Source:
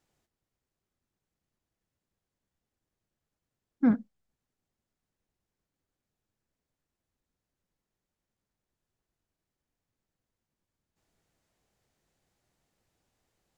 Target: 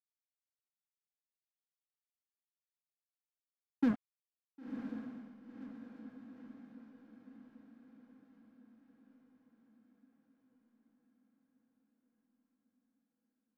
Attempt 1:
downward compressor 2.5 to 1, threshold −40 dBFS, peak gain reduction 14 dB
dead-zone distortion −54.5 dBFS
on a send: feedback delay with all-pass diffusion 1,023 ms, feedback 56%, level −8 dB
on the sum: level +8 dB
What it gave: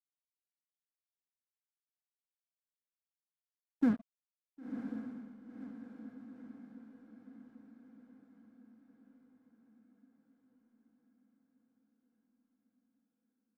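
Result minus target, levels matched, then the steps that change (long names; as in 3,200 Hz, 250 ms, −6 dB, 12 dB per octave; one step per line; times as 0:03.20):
dead-zone distortion: distortion −7 dB
change: dead-zone distortion −44.5 dBFS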